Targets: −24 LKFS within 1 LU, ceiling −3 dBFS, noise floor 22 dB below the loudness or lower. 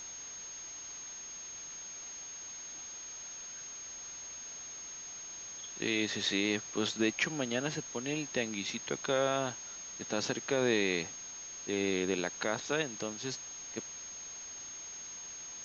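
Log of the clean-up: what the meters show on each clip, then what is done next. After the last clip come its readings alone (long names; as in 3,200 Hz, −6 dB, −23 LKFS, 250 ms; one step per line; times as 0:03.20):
interfering tone 6,500 Hz; level of the tone −43 dBFS; background noise floor −46 dBFS; target noise floor −58 dBFS; integrated loudness −36.0 LKFS; sample peak −17.0 dBFS; target loudness −24.0 LKFS
→ notch filter 6,500 Hz, Q 30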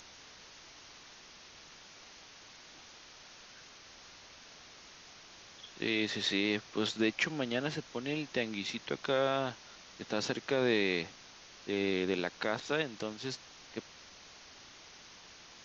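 interfering tone none found; background noise floor −55 dBFS; target noise floor −56 dBFS
→ broadband denoise 6 dB, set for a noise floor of −55 dBFS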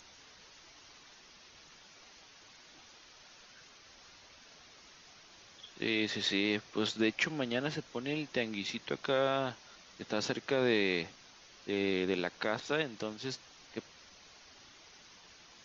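background noise floor −58 dBFS; integrated loudness −34.0 LKFS; sample peak −16.5 dBFS; target loudness −24.0 LKFS
→ level +10 dB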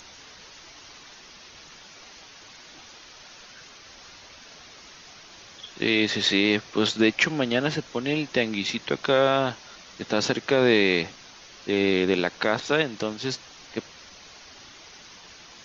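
integrated loudness −24.0 LKFS; sample peak −6.5 dBFS; background noise floor −48 dBFS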